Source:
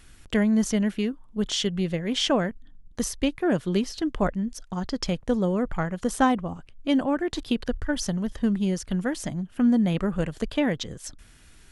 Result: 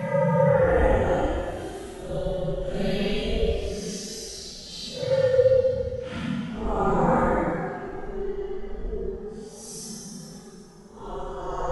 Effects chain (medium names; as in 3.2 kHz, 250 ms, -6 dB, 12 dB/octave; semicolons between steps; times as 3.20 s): ring modulator 200 Hz; two-slope reverb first 0.26 s, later 2.2 s, from -28 dB, DRR -1.5 dB; Paulstretch 8.5×, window 0.05 s, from 3.42 s